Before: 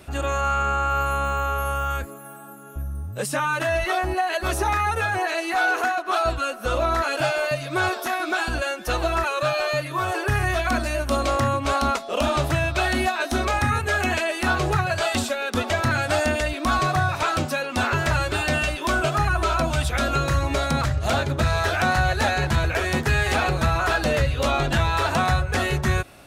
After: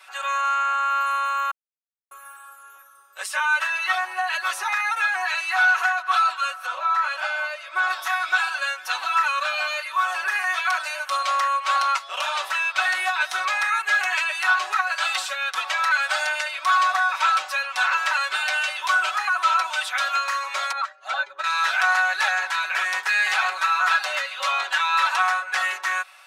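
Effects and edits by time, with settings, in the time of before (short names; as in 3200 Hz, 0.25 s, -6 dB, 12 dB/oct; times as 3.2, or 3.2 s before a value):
1.51–2.11 mute
6.66–7.9 high shelf 2300 Hz -9.5 dB
20.72–21.44 spectral contrast raised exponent 1.5
whole clip: HPF 990 Hz 24 dB/oct; high shelf 6700 Hz -11 dB; comb 5.3 ms, depth 88%; gain +2 dB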